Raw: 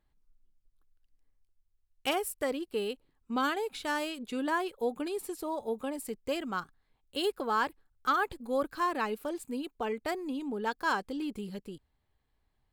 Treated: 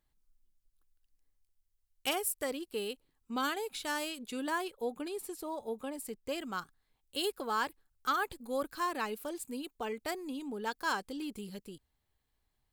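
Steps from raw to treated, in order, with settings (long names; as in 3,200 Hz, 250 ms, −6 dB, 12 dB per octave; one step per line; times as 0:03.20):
high-shelf EQ 3,800 Hz +10 dB, from 0:04.68 +4 dB, from 0:06.38 +10 dB
level −4.5 dB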